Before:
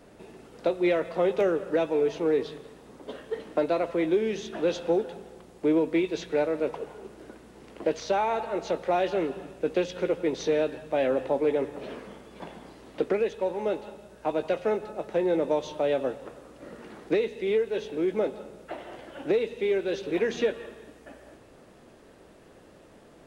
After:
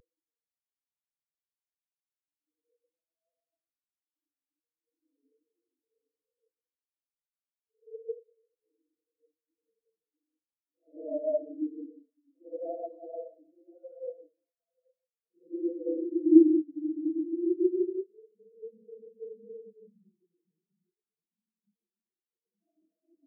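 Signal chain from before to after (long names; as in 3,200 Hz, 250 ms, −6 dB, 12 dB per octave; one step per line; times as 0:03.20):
adaptive Wiener filter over 25 samples
on a send: repeating echo 1,133 ms, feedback 42%, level −20.5 dB
on the sum: extreme stretch with random phases 12×, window 0.05 s, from 0:02.66
parametric band 250 Hz +11 dB 0.34 octaves
in parallel at +0.5 dB: downward compressor, threshold −32 dBFS, peak gain reduction 16.5 dB
on the sum: high-shelf EQ 3,100 Hz +11 dB
comb filter 6.2 ms, depth 80%
single-tap delay 838 ms −20.5 dB
every bin expanded away from the loudest bin 4 to 1
level −1.5 dB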